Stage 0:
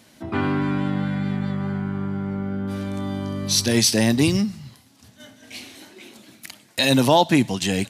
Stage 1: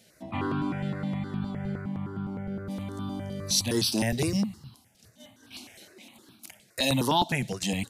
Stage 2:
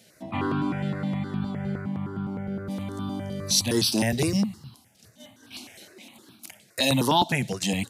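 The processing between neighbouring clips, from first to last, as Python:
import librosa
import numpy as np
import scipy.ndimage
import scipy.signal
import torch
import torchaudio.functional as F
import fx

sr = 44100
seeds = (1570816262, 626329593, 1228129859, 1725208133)

y1 = fx.phaser_held(x, sr, hz=9.7, low_hz=280.0, high_hz=2000.0)
y1 = y1 * librosa.db_to_amplitude(-4.0)
y2 = scipy.signal.sosfilt(scipy.signal.butter(2, 77.0, 'highpass', fs=sr, output='sos'), y1)
y2 = y2 * librosa.db_to_amplitude(3.0)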